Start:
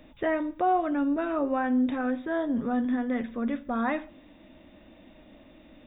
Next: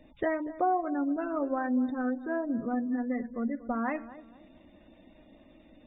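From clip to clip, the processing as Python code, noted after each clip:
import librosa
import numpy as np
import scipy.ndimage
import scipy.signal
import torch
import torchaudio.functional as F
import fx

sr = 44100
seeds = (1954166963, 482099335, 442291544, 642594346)

y = fx.spec_gate(x, sr, threshold_db=-25, keep='strong')
y = fx.transient(y, sr, attack_db=4, sustain_db=-2)
y = fx.echo_filtered(y, sr, ms=238, feedback_pct=33, hz=1300.0, wet_db=-15)
y = F.gain(torch.from_numpy(y), -4.0).numpy()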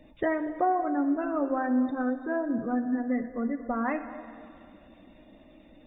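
y = fx.rev_plate(x, sr, seeds[0], rt60_s=2.5, hf_ratio=0.85, predelay_ms=0, drr_db=9.5)
y = F.gain(torch.from_numpy(y), 2.0).numpy()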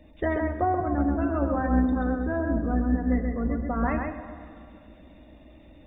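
y = fx.octave_divider(x, sr, octaves=2, level_db=1.0)
y = y + 10.0 ** (-4.0 / 20.0) * np.pad(y, (int(134 * sr / 1000.0), 0))[:len(y)]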